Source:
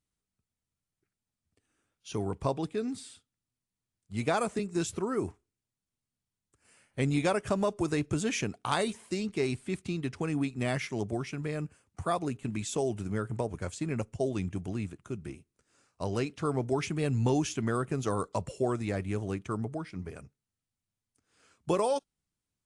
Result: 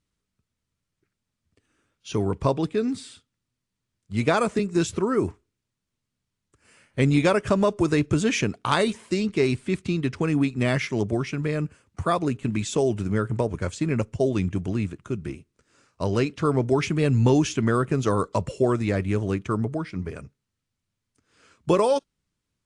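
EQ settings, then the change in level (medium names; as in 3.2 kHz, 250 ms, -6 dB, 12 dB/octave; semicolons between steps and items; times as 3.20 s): distance through air 52 m; peaking EQ 760 Hz -6.5 dB 0.28 oct; +8.5 dB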